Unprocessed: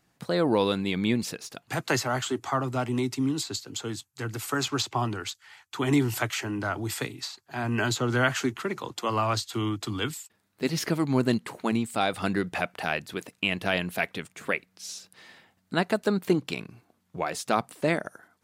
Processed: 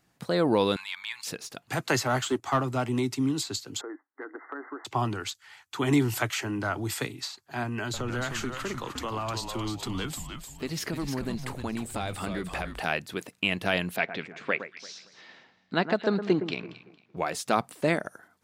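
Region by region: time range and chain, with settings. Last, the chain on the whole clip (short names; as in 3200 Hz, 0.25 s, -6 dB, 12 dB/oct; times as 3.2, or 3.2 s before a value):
0.76–1.27 elliptic high-pass 920 Hz + transient shaper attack -7 dB, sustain -12 dB + fast leveller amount 50%
2.05–2.63 sample leveller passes 1 + upward expander, over -38 dBFS
3.81–4.85 brick-wall FIR band-pass 260–2100 Hz + compressor, threshold -34 dBFS
7.63–12.85 compressor 4:1, threshold -29 dBFS + frequency-shifting echo 0.305 s, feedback 34%, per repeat -130 Hz, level -6 dB
13.96–17.17 LPF 5100 Hz 24 dB/oct + bell 75 Hz -11 dB 1.2 oct + echo with dull and thin repeats by turns 0.114 s, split 1900 Hz, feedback 51%, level -10 dB
whole clip: dry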